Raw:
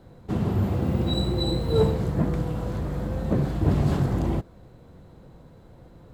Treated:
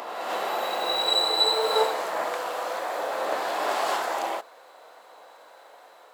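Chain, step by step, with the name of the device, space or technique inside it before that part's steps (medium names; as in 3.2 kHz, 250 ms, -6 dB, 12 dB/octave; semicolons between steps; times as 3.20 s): ghost voice (reverse; reverberation RT60 2.5 s, pre-delay 26 ms, DRR -0.5 dB; reverse; high-pass 660 Hz 24 dB/octave); trim +8.5 dB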